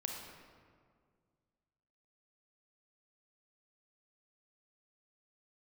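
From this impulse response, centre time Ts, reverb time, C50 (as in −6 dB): 70 ms, 2.0 s, 2.0 dB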